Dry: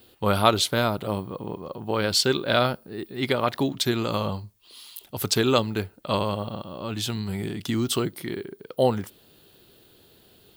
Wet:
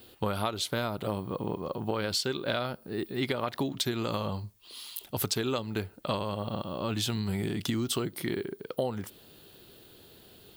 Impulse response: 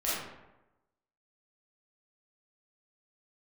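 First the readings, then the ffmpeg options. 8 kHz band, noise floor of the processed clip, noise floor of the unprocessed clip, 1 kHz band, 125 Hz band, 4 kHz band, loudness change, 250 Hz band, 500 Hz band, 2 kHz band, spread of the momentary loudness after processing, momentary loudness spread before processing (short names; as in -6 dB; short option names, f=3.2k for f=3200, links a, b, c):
-6.0 dB, -57 dBFS, -57 dBFS, -8.5 dB, -5.0 dB, -7.0 dB, -6.5 dB, -5.5 dB, -7.0 dB, -7.0 dB, 10 LU, 15 LU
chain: -af "acompressor=threshold=-28dB:ratio=12,volume=1.5dB"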